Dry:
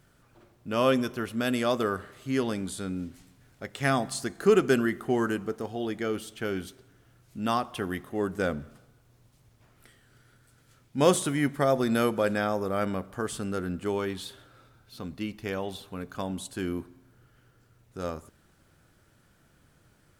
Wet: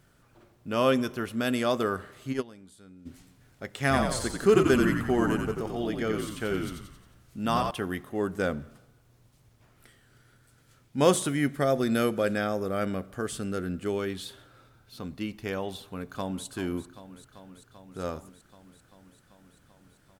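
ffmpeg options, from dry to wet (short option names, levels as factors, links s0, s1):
-filter_complex "[0:a]asplit=3[s0][s1][s2];[s0]afade=t=out:st=2.32:d=0.02[s3];[s1]agate=range=0.126:threshold=0.0562:ratio=16:release=100:detection=peak,afade=t=in:st=2.32:d=0.02,afade=t=out:st=3.05:d=0.02[s4];[s2]afade=t=in:st=3.05:d=0.02[s5];[s3][s4][s5]amix=inputs=3:normalize=0,asettb=1/sr,asplit=3[s6][s7][s8];[s6]atrim=end=3.784[s9];[s7]atrim=start=3.78:end=7.71,asetpts=PTS-STARTPTS,afade=t=in:d=0.004:c=qsin,afade=t=out:st=3.926:d=0.004:c=qsin,asplit=8[s10][s11][s12][s13][s14][s15][s16][s17];[s11]adelay=89,afreqshift=-55,volume=0.596[s18];[s12]adelay=178,afreqshift=-110,volume=0.316[s19];[s13]adelay=267,afreqshift=-165,volume=0.168[s20];[s14]adelay=356,afreqshift=-220,volume=0.0891[s21];[s15]adelay=445,afreqshift=-275,volume=0.0468[s22];[s16]adelay=534,afreqshift=-330,volume=0.0248[s23];[s17]adelay=623,afreqshift=-385,volume=0.0132[s24];[s10][s18][s19][s20][s21][s22][s23][s24]amix=inputs=8:normalize=0,atrim=end_sample=173313[s25];[s8]atrim=start=7.706[s26];[s9][s25]acrossfade=d=0.004:c1=hsin:c2=qsin[s27];[s27][s26]acrossfade=d=0.004:c1=qsin:c2=hsin,asettb=1/sr,asplit=3[s28][s29][s30];[s28]atrim=end=11.284[s31];[s29]atrim=start=11.28:end=14.28,asetpts=PTS-STARTPTS,afade=t=in:d=0.004:c=qsin,afade=t=out:st=2.996:d=0.004:c=qsin,equalizer=f=940:t=o:w=0.45:g=-8.5[s32];[s30]atrim=start=14.276[s33];[s31][s32]acrossfade=d=0.004:c1=hsin:c2=qsin[s34];[s34][s33]acrossfade=d=0.004:c1=qsin:c2=hsin,asplit=2[s35][s36];[s36]afade=t=in:st=15.76:d=0.01,afade=t=out:st=16.46:d=0.01,aecho=0:1:390|780|1170|1560|1950|2340|2730|3120|3510|3900|4290|4680:0.223872|0.179098|0.143278|0.114623|0.091698|0.0733584|0.0586867|0.0469494|0.0375595|0.0300476|0.0240381|0.0192305[s37];[s35][s37]amix=inputs=2:normalize=0"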